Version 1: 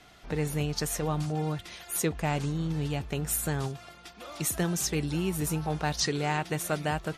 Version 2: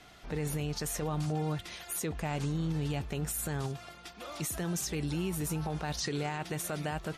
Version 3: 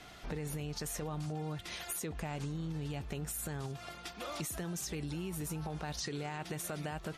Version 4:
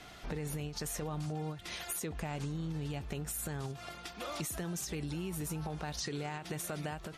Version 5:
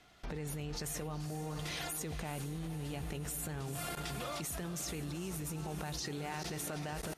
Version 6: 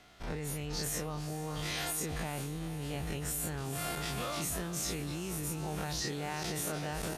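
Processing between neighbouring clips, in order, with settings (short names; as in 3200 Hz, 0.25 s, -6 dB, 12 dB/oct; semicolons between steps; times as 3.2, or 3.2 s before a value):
limiter -25.5 dBFS, peak gain reduction 10 dB
compressor 6:1, threshold -39 dBFS, peak gain reduction 9.5 dB; gain +2.5 dB
ending taper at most 130 dB/s; gain +1 dB
diffused feedback echo 0.457 s, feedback 60%, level -10 dB; level quantiser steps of 23 dB; gain +6 dB
spectral dilation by 60 ms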